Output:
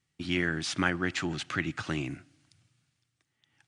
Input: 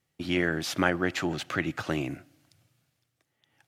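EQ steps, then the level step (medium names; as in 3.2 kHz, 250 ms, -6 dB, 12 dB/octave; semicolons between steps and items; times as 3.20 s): brick-wall FIR low-pass 10 kHz; peaking EQ 570 Hz -10 dB 1.2 oct; 0.0 dB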